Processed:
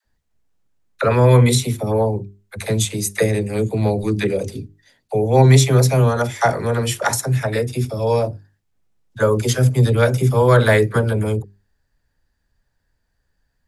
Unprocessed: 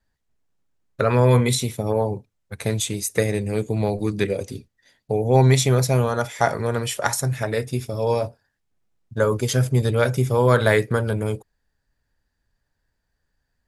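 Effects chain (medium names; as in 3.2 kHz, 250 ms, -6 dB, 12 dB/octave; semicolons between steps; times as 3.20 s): bass shelf 220 Hz +3 dB; hum notches 50/100/150/200/250/300/350/400 Hz; phase dispersion lows, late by 52 ms, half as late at 470 Hz; trim +3 dB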